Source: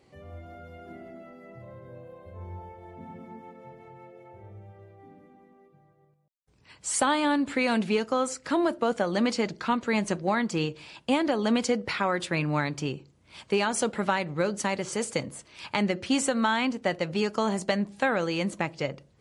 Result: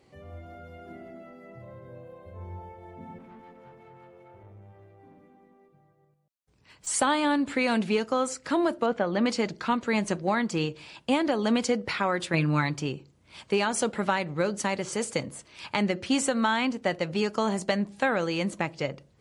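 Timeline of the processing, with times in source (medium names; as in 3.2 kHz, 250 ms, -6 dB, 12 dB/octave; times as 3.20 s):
3.18–6.87 s: valve stage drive 44 dB, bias 0.45
8.86–9.26 s: low-pass 3.1 kHz
12.33–12.76 s: comb 6 ms, depth 63%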